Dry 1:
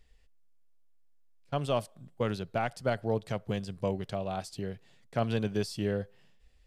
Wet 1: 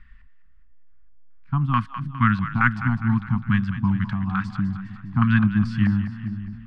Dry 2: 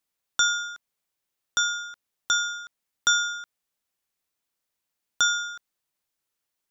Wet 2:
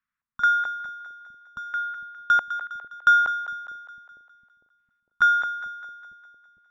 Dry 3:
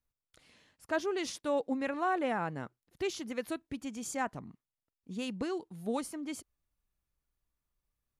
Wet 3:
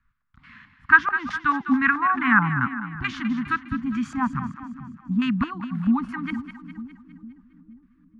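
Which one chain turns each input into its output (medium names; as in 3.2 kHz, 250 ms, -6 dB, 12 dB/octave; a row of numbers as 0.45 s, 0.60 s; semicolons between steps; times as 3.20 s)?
elliptic band-stop 240–1100 Hz, stop band 50 dB; LFO low-pass square 2.3 Hz 740–1600 Hz; two-band feedback delay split 450 Hz, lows 454 ms, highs 204 ms, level -11 dB; normalise loudness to -23 LUFS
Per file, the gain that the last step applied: +14.0 dB, +0.5 dB, +17.5 dB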